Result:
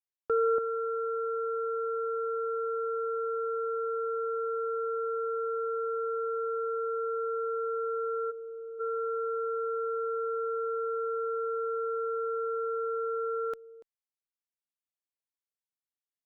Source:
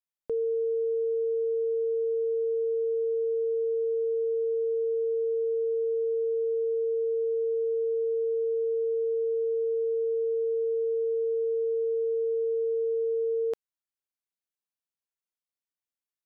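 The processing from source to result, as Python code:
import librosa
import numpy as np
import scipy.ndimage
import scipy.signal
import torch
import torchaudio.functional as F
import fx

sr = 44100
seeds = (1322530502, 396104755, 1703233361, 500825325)

p1 = x + fx.echo_single(x, sr, ms=287, db=-13.5, dry=0)
p2 = fx.dynamic_eq(p1, sr, hz=310.0, q=1.2, threshold_db=-45.0, ratio=4.0, max_db=4)
p3 = fx.cheby_harmonics(p2, sr, harmonics=(3,), levels_db=(-7,), full_scale_db=-22.0)
y = fx.vowel_filter(p3, sr, vowel='e', at=(8.3, 8.79), fade=0.02)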